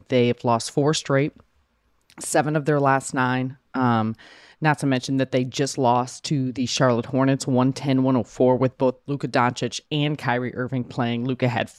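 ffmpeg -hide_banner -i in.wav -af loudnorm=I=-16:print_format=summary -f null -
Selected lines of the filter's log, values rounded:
Input Integrated:    -22.9 LUFS
Input True Peak:      -7.2 dBTP
Input LRA:             2.5 LU
Input Threshold:     -33.1 LUFS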